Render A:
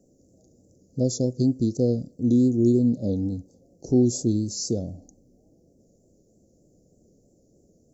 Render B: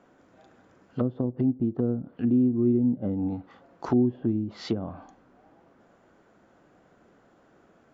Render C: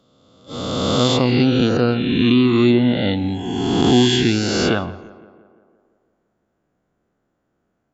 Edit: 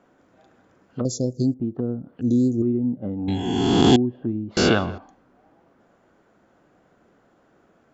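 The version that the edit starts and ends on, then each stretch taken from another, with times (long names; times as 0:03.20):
B
0:01.05–0:01.54: punch in from A
0:02.21–0:02.62: punch in from A
0:03.28–0:03.96: punch in from C
0:04.57–0:04.98: punch in from C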